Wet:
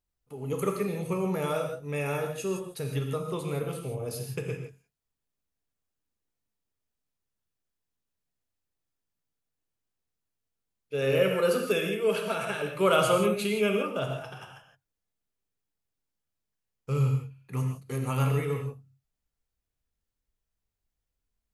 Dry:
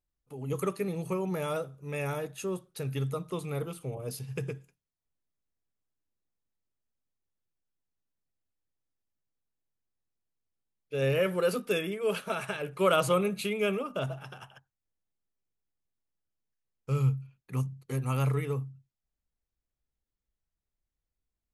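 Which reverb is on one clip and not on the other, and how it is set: gated-style reverb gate 190 ms flat, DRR 2.5 dB; trim +1 dB

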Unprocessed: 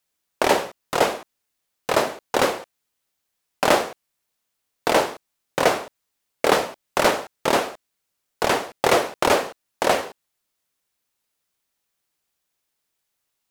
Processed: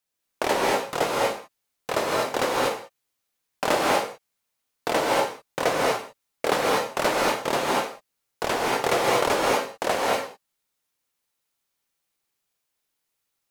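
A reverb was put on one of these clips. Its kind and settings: gated-style reverb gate 260 ms rising, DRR -3 dB; trim -6 dB

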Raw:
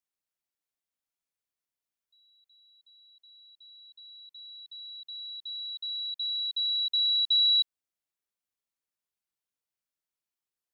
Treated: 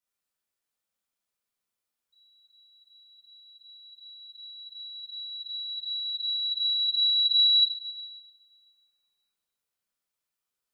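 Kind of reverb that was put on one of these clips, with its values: two-slope reverb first 0.54 s, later 1.9 s, DRR -8.5 dB; trim -4 dB

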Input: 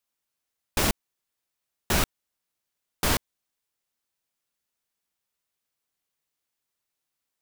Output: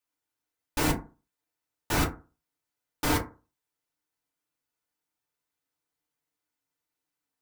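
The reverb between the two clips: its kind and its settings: FDN reverb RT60 0.33 s, low-frequency decay 1.05×, high-frequency decay 0.4×, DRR -5 dB; trim -7.5 dB

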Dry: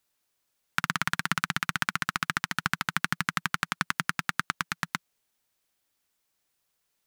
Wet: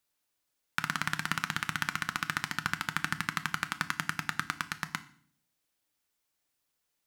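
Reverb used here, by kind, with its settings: FDN reverb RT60 0.51 s, low-frequency decay 1.55×, high-frequency decay 1×, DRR 10 dB; trim -4 dB

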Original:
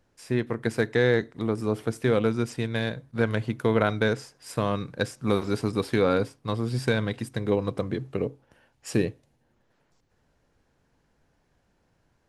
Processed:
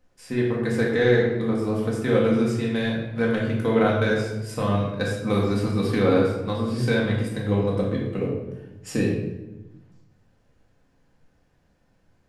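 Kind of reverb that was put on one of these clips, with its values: simulated room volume 420 m³, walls mixed, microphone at 2 m; trim -3 dB

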